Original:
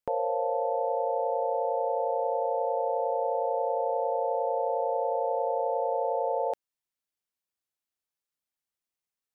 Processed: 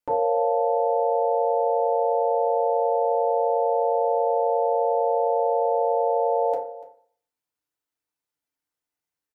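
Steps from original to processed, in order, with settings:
on a send: single-tap delay 291 ms −18 dB
on the sum: feedback delay network reverb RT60 0.51 s, low-frequency decay 0.9×, high-frequency decay 0.35×, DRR −4.5 dB
level −2 dB

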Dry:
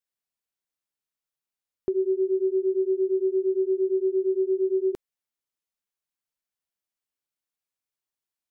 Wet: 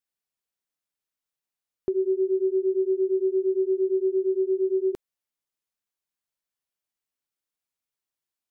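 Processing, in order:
0:02.07–0:04.18: dynamic equaliser 290 Hz, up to +3 dB, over −43 dBFS, Q 5.5

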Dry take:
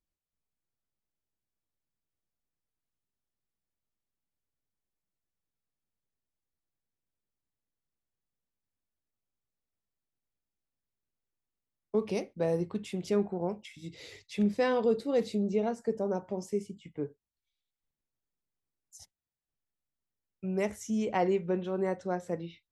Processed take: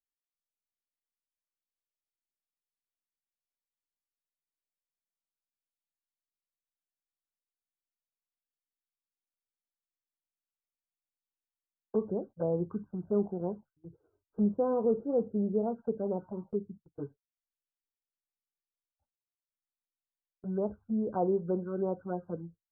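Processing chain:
noise gate −45 dBFS, range −17 dB
flanger swept by the level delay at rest 3.6 ms, full sweep at −26 dBFS
linear-phase brick-wall low-pass 1,600 Hz

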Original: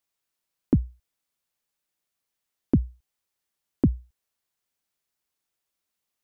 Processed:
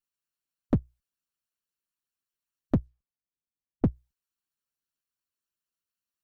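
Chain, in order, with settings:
lower of the sound and its delayed copy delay 0.71 ms
0:02.75–0:03.96: low-pass that shuts in the quiet parts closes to 400 Hz, open at −20.5 dBFS
harmonic and percussive parts rebalanced harmonic −18 dB
level −2.5 dB

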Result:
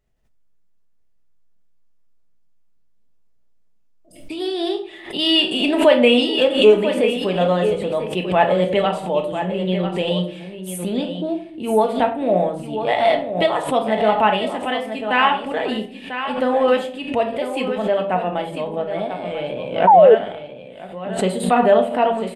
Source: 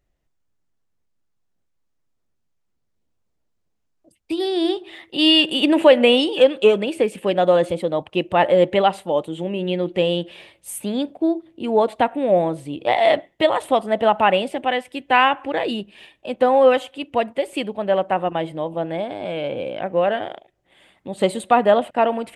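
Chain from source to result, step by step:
tape wow and flutter 48 cents
on a send: single-tap delay 994 ms −9.5 dB
on the sum: rectangular room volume 440 cubic metres, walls furnished, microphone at 1.5 metres
sound drawn into the spectrogram fall, 0:19.87–0:20.15, 410–970 Hz −6 dBFS
background raised ahead of every attack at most 110 dB per second
level −2.5 dB

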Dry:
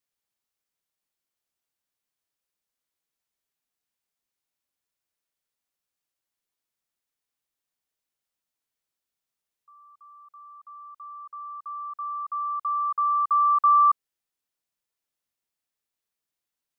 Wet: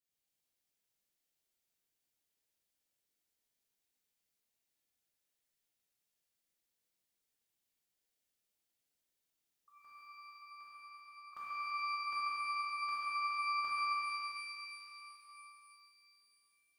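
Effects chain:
parametric band 1,100 Hz −8 dB 0.87 octaves
output level in coarse steps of 16 dB
brickwall limiter −42.5 dBFS, peak gain reduction 15.5 dB
regular buffer underruns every 0.76 s, samples 256, repeat, from 0:00.72
reverb with rising layers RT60 3.2 s, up +12 semitones, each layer −8 dB, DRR −9 dB

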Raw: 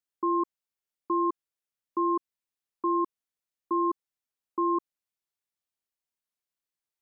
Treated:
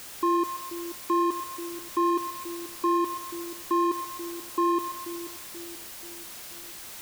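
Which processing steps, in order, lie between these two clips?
converter with a step at zero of −35.5 dBFS
echo with a time of its own for lows and highs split 490 Hz, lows 483 ms, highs 130 ms, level −10 dB
level +1.5 dB

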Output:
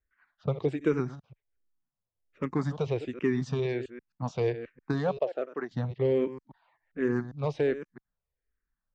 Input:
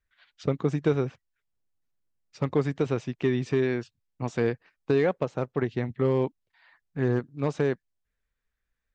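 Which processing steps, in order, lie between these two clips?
delay that plays each chunk backwards 133 ms, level −13 dB
low-pass that shuts in the quiet parts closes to 1,400 Hz, open at −23.5 dBFS
0:05.17–0:05.71: loudspeaker in its box 430–6,300 Hz, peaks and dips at 640 Hz +7 dB, 930 Hz −4 dB, 2,200 Hz −8 dB, 4,000 Hz −4 dB
frequency shifter mixed with the dry sound −1.3 Hz

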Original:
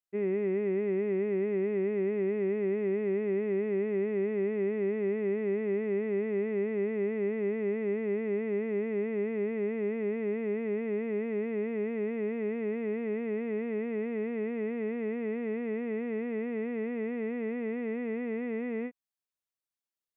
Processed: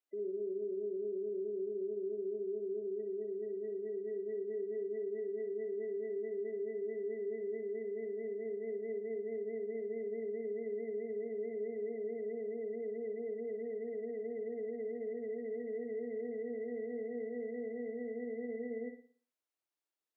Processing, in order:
gate on every frequency bin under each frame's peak −20 dB strong
Butterworth high-pass 280 Hz 36 dB per octave
spectral tilt −2 dB per octave
brickwall limiter −36.5 dBFS, peak gain reduction 13.5 dB
on a send: flutter between parallel walls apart 9.9 metres, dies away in 0.46 s
on the sum: level +1 dB

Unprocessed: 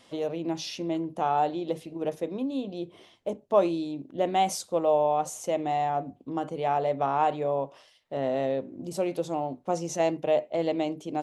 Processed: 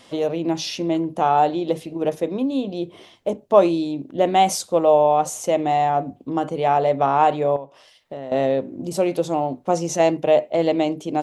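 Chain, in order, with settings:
0:07.56–0:08.32: downward compressor 4 to 1, threshold −40 dBFS, peak gain reduction 13.5 dB
level +8 dB

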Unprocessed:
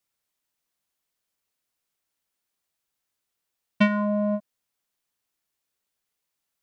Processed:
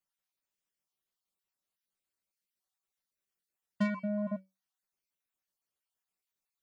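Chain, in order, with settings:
time-frequency cells dropped at random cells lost 37%
soft clipping −17 dBFS, distortion −16 dB
tuned comb filter 190 Hz, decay 0.22 s, harmonics all, mix 70%

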